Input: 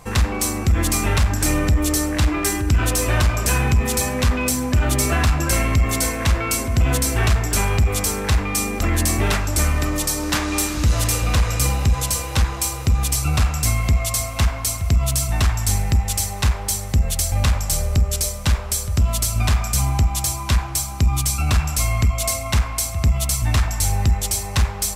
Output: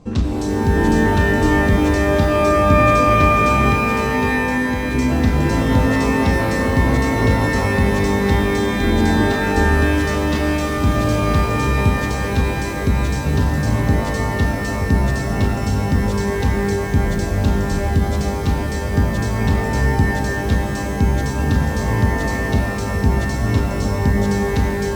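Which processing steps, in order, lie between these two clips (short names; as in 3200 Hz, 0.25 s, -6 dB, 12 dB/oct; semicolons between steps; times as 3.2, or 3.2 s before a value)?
graphic EQ 250/1000/2000 Hz +12/-6/-11 dB; 3.71–4.95 compressor, threshold -18 dBFS, peak gain reduction 9 dB; air absorption 140 m; shimmer reverb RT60 3 s, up +12 st, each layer -2 dB, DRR 4 dB; gain -2 dB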